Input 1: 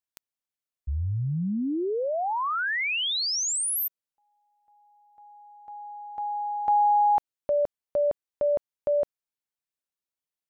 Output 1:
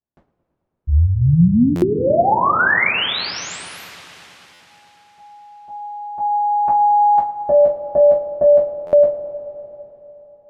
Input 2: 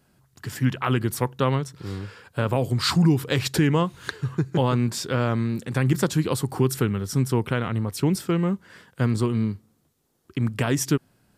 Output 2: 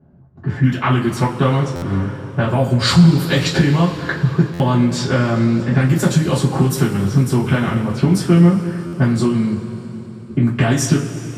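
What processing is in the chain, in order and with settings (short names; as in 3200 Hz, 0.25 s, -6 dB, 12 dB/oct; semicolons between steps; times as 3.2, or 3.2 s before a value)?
low-pass opened by the level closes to 610 Hz, open at -17.5 dBFS; compressor 5:1, threshold -26 dBFS; on a send: darkening echo 0.111 s, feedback 84%, low-pass 1000 Hz, level -16 dB; on the sum: two-slope reverb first 0.24 s, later 3.9 s, from -21 dB, DRR -7.5 dB; stuck buffer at 1.75/4.53/8.86, samples 512, times 5; gain +5 dB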